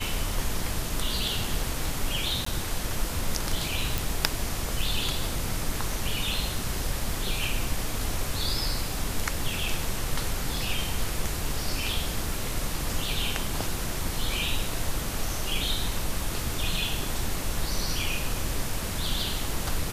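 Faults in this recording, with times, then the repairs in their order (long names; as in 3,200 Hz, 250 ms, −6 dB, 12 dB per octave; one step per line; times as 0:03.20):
0:02.45–0:02.46: drop-out 14 ms
0:03.98: click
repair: click removal
repair the gap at 0:02.45, 14 ms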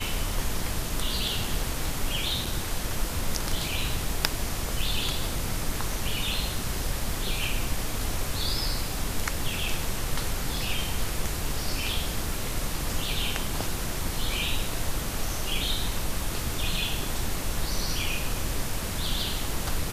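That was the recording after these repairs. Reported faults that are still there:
none of them is left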